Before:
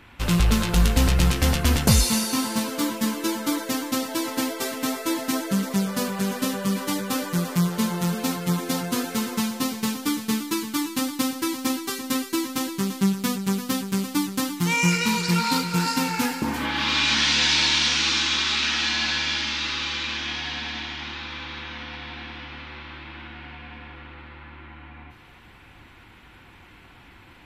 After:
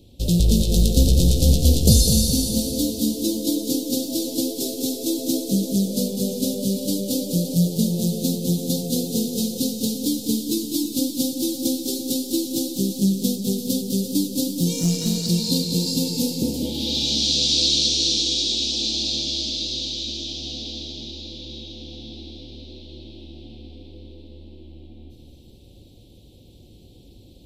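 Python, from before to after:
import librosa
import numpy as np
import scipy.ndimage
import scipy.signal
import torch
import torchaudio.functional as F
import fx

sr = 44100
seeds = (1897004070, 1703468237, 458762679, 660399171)

y = scipy.signal.sosfilt(scipy.signal.ellip(3, 1.0, 80, [550.0, 3800.0], 'bandstop', fs=sr, output='sos'), x)
y = fx.tube_stage(y, sr, drive_db=17.0, bias=0.5, at=(14.79, 15.29))
y = fx.echo_feedback(y, sr, ms=203, feedback_pct=49, wet_db=-6.5)
y = fx.echo_warbled(y, sr, ms=276, feedback_pct=44, rate_hz=2.8, cents=59, wet_db=-13.5)
y = y * librosa.db_to_amplitude(3.0)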